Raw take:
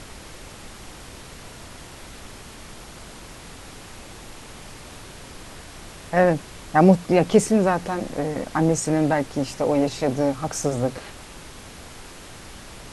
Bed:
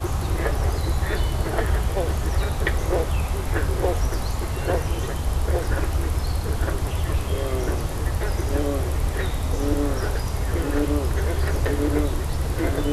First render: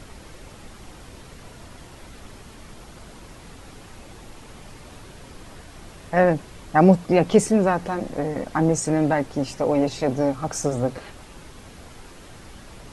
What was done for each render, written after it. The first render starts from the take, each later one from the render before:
broadband denoise 6 dB, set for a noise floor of −42 dBFS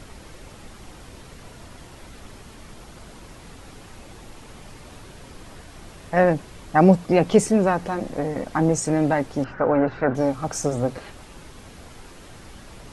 0:09.44–0:10.15: low-pass with resonance 1,500 Hz, resonance Q 6.7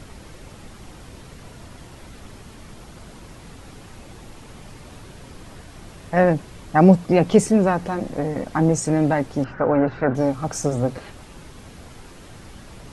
parametric band 130 Hz +3.5 dB 2.2 octaves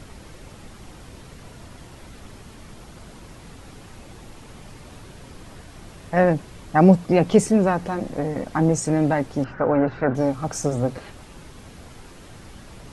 level −1 dB

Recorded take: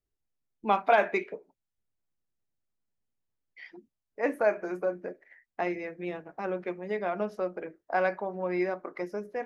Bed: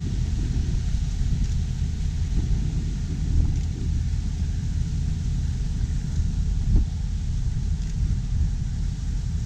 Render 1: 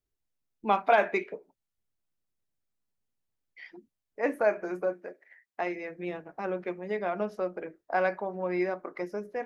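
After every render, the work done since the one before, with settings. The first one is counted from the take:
0:04.92–0:05.89: high-pass filter 680 Hz → 250 Hz 6 dB per octave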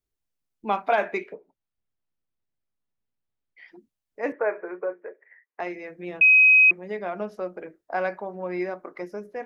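0:01.33–0:03.68: high-frequency loss of the air 190 metres
0:04.32–0:05.60: loudspeaker in its box 400–2,300 Hz, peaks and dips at 440 Hz +9 dB, 700 Hz −5 dB, 1,000 Hz +4 dB, 1,900 Hz +4 dB
0:06.21–0:06.71: beep over 2,530 Hz −11.5 dBFS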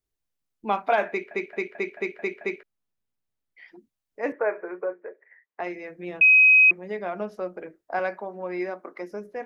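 0:01.09: stutter in place 0.22 s, 7 plays
0:04.84–0:05.64: Bessel low-pass filter 3,200 Hz
0:07.99–0:09.11: Chebyshev high-pass filter 210 Hz, order 3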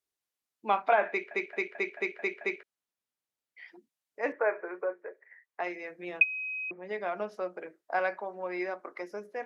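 treble cut that deepens with the level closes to 760 Hz, closed at −13.5 dBFS
high-pass filter 570 Hz 6 dB per octave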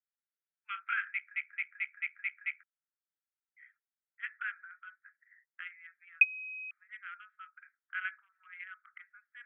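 adaptive Wiener filter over 15 samples
Chebyshev band-pass filter 1,300–3,200 Hz, order 5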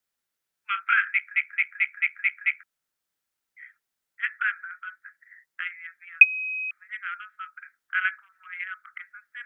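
level +12 dB
brickwall limiter −2 dBFS, peak gain reduction 1.5 dB

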